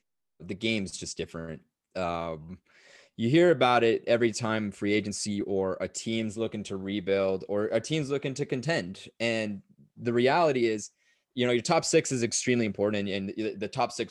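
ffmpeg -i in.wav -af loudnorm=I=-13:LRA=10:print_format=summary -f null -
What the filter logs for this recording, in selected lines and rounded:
Input Integrated:    -28.1 LUFS
Input True Peak:      -9.2 dBTP
Input LRA:             3.8 LU
Input Threshold:     -38.6 LUFS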